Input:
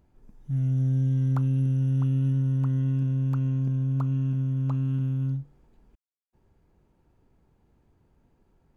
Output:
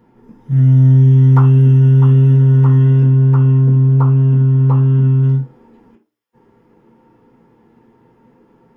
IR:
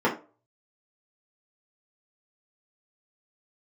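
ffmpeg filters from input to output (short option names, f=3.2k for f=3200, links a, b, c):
-filter_complex "[0:a]asetnsamples=n=441:p=0,asendcmd='3.03 highshelf g 3;5.23 highshelf g 11.5',highshelf=f=2k:g=10[a];[1:a]atrim=start_sample=2205,afade=t=out:st=0.34:d=0.01,atrim=end_sample=15435[b];[a][b]afir=irnorm=-1:irlink=0,volume=-1.5dB"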